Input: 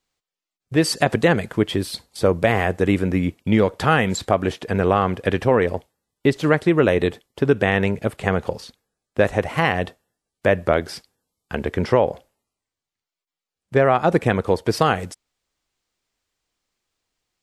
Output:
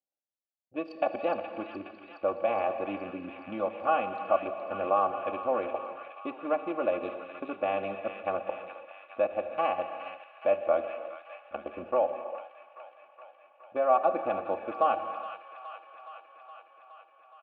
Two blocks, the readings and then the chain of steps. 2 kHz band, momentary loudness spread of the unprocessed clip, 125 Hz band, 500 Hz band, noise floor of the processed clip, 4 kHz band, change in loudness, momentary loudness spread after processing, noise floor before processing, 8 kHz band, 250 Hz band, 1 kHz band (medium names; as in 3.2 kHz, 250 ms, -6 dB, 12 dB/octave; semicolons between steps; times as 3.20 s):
-17.0 dB, 9 LU, under -30 dB, -9.0 dB, -62 dBFS, -20.0 dB, -11.0 dB, 17 LU, under -85 dBFS, under -40 dB, -18.0 dB, -5.5 dB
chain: local Wiener filter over 41 samples; comb 3.5 ms, depth 90%; in parallel at +1.5 dB: level held to a coarse grid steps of 23 dB; on the sum: vowel filter a; distance through air 280 m; on a send: feedback echo behind a high-pass 418 ms, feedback 71%, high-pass 1.4 kHz, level -7 dB; on the sum: gated-style reverb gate 370 ms flat, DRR 8 dB; trim -2.5 dB